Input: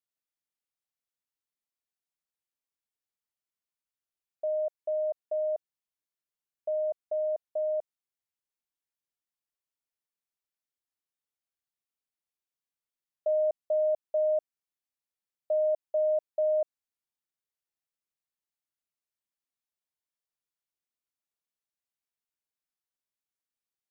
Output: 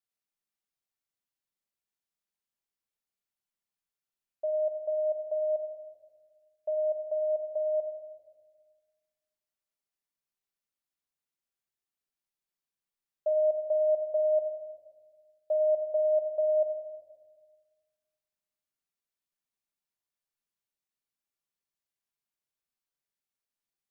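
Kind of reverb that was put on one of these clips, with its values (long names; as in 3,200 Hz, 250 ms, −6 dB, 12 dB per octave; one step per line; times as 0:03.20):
rectangular room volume 1,100 cubic metres, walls mixed, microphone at 1.2 metres
level −2 dB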